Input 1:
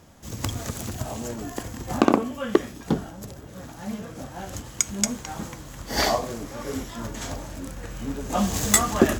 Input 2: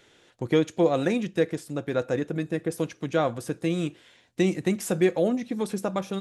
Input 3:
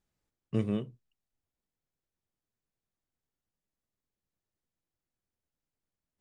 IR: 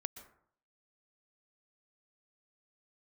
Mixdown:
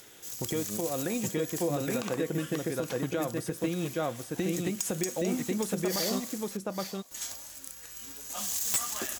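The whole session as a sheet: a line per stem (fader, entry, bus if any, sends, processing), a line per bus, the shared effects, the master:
+2.5 dB, 0.00 s, muted 6.57–7.11, no bus, no send, echo send -15 dB, pre-emphasis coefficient 0.97; upward compressor, threshold -51 dBFS; wavefolder -14 dBFS
+2.0 dB, 0.00 s, bus A, no send, echo send -8.5 dB, dry
-1.0 dB, 0.00 s, bus A, no send, no echo send, dry
bus A: 0.0 dB, compressor, threshold -28 dBFS, peak gain reduction 13.5 dB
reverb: off
echo: echo 0.82 s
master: limiter -20 dBFS, peak gain reduction 9.5 dB

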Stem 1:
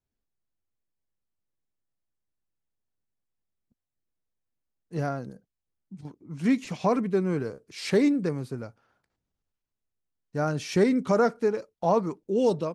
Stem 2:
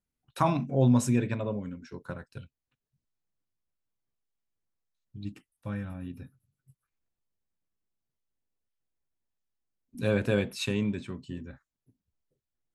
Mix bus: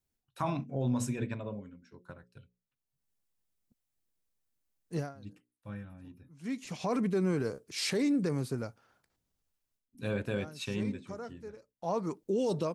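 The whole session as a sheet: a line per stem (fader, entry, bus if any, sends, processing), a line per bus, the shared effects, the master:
0.0 dB, 0.00 s, no send, high shelf 4700 Hz +8 dB; auto duck -21 dB, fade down 0.20 s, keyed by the second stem
-1.0 dB, 0.00 s, no send, notches 60/120/180/240/300/360/420/480/540 Hz; upward expander 1.5:1, over -43 dBFS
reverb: off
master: limiter -22.5 dBFS, peak gain reduction 10.5 dB

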